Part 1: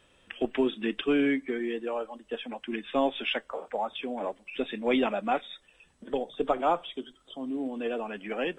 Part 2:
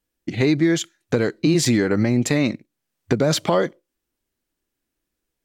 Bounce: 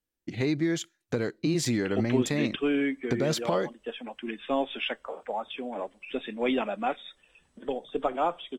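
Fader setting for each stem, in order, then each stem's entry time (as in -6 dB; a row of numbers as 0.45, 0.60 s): -1.5, -9.0 dB; 1.55, 0.00 s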